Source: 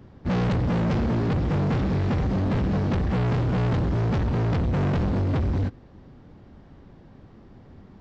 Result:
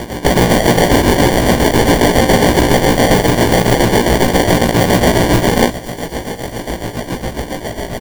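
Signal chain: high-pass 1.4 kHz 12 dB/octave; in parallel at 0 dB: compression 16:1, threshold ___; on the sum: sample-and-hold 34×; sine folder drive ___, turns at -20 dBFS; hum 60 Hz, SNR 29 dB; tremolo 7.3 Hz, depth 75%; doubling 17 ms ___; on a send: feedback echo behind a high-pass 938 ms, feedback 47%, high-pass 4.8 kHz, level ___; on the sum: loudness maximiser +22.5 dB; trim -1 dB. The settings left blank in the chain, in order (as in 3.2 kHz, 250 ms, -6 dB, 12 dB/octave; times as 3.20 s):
-52 dBFS, 15 dB, -3 dB, -19 dB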